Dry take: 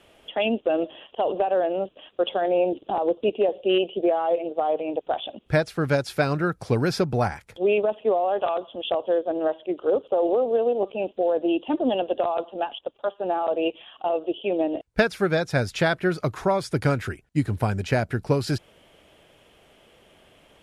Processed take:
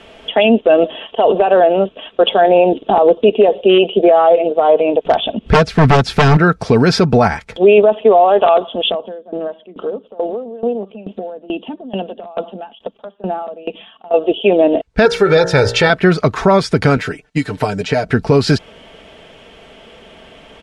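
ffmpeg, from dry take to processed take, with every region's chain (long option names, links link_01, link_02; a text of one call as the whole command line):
ffmpeg -i in.wav -filter_complex "[0:a]asettb=1/sr,asplit=3[link_01][link_02][link_03];[link_01]atrim=end=5.054[link_04];[link_02]atrim=start=5.05:end=6.37,asetpts=PTS-STARTPTS,afade=type=in:duration=0.004:curve=qsin,afade=type=out:start_time=1.316:duration=0.004:curve=qsin,bass=frequency=250:gain=9,treble=frequency=4000:gain=-2,acompressor=mode=upward:threshold=-39dB:ratio=2.5:attack=3.2:release=140:knee=2.83:detection=peak,aeval=exprs='0.168*(abs(mod(val(0)/0.168+3,4)-2)-1)':channel_layout=same[link_05];[link_03]atrim=start=6.366[link_06];[link_04][link_05]acrossfade=duration=0.004:curve1=hsin:curve2=qsin[link_07];[link_07][link_06]acrossfade=duration=0.004:curve1=qsin:curve2=hsin,asettb=1/sr,asplit=3[link_08][link_09][link_10];[link_08]atrim=end=8.894[link_11];[link_09]atrim=start=8.89:end=14.14,asetpts=PTS-STARTPTS,afade=type=in:duration=0.004:curve=qsin,afade=type=out:start_time=5.246:duration=0.004:curve=qsin,equalizer=frequency=200:width_type=o:width=0.66:gain=13,acompressor=threshold=-32dB:ratio=2.5:attack=3.2:release=140:knee=1:detection=peak,aeval=exprs='val(0)*pow(10,-21*if(lt(mod(2.3*n/s,1),2*abs(2.3)/1000),1-mod(2.3*n/s,1)/(2*abs(2.3)/1000),(mod(2.3*n/s,1)-2*abs(2.3)/1000)/(1-2*abs(2.3)/1000))/20)':channel_layout=same[link_12];[link_10]atrim=start=14.136[link_13];[link_11][link_12]acrossfade=duration=0.004:curve1=hsin:curve2=qsin[link_14];[link_14][link_13]acrossfade=duration=0.004:curve1=qsin:curve2=hsin,asettb=1/sr,asplit=3[link_15][link_16][link_17];[link_15]atrim=end=15.054[link_18];[link_16]atrim=start=15.05:end=15.9,asetpts=PTS-STARTPTS,afade=type=in:duration=0.004:curve=qsin,afade=type=out:start_time=0.846:duration=0.004:curve=qsin,aecho=1:1:2.2:0.76,atrim=end_sample=37485,bandreject=frequency=58.7:width_type=h:width=4,bandreject=frequency=117.4:width_type=h:width=4,bandreject=frequency=176.1:width_type=h:width=4,bandreject=frequency=234.8:width_type=h:width=4,bandreject=frequency=293.5:width_type=h:width=4,bandreject=frequency=352.2:width_type=h:width=4,bandreject=frequency=410.9:width_type=h:width=4,bandreject=frequency=469.6:width_type=h:width=4,bandreject=frequency=528.3:width_type=h:width=4,bandreject=frequency=587:width_type=h:width=4,bandreject=frequency=645.7:width_type=h:width=4,bandreject=frequency=704.4:width_type=h:width=4,bandreject=frequency=763.1:width_type=h:width=4,bandreject=frequency=821.8:width_type=h:width=4,bandreject=frequency=880.5:width_type=h:width=4,bandreject=frequency=939.2:width_type=h:width=4,bandreject=frequency=997.9:width_type=h:width=4,bandreject=frequency=1056.6:width_type=h:width=4,bandreject=frequency=1115.3:width_type=h:width=4,bandreject=frequency=1174:width_type=h:width=4,bandreject=frequency=1232.7:width_type=h:width=4,bandreject=frequency=1291.4:width_type=h:width=4,bandreject=frequency=1350.1:width_type=h:width=4,bandreject=frequency=1408.8:width_type=h:width=4,bandreject=frequency=1467.5:width_type=h:width=4,bandreject=frequency=1526.2:width_type=h:width=4,bandreject=frequency=1584.9:width_type=h:width=4,bandreject=frequency=1643.6:width_type=h:width=4,bandreject=frequency=1702.3:width_type=h:width=4,bandreject=frequency=1761:width_type=h:width=4,bandreject=frequency=1819.7:width_type=h:width=4,bandreject=frequency=1878.4:width_type=h:width=4[link_19];[link_17]atrim=start=15.896[link_20];[link_18][link_19]acrossfade=duration=0.004:curve1=hsin:curve2=qsin[link_21];[link_21][link_20]acrossfade=duration=0.004:curve1=qsin:curve2=hsin,asettb=1/sr,asplit=3[link_22][link_23][link_24];[link_22]atrim=end=16.974[link_25];[link_23]atrim=start=16.97:end=18.06,asetpts=PTS-STARTPTS,afade=type=in:duration=0.004:curve=qsin,afade=type=out:start_time=1.086:duration=0.004:curve=qsin,lowshelf=frequency=250:gain=-10.5,aecho=1:1:6.7:0.75,atrim=end_sample=48069,acrossover=split=710|3500[link_26][link_27][link_28];[link_26]acompressor=threshold=-28dB:ratio=4[link_29];[link_27]acompressor=threshold=-41dB:ratio=4[link_30];[link_28]acompressor=threshold=-45dB:ratio=4[link_31];[link_29][link_30][link_31]amix=inputs=3:normalize=0[link_32];[link_24]atrim=start=18.056[link_33];[link_25][link_32]acrossfade=duration=0.004:curve1=hsin:curve2=qsin[link_34];[link_34][link_33]acrossfade=duration=0.004:curve1=qsin:curve2=hsin,lowpass=5800,aecho=1:1:4.5:0.4,alimiter=level_in=15.5dB:limit=-1dB:release=50:level=0:latency=1,volume=-1dB" out.wav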